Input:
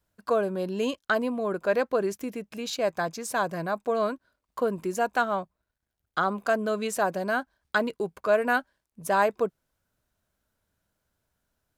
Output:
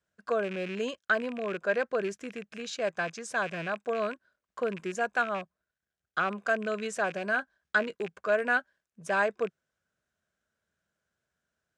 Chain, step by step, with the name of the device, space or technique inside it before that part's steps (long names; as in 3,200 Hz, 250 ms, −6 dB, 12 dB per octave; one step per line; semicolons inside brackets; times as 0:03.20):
0:07.07–0:07.95: double-tracking delay 19 ms −14 dB
car door speaker with a rattle (loose part that buzzes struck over −40 dBFS, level −27 dBFS; loudspeaker in its box 97–8,100 Hz, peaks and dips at 110 Hz −8 dB, 280 Hz −7 dB, 910 Hz −7 dB, 1,600 Hz +6 dB, 4,400 Hz −4 dB)
level −3.5 dB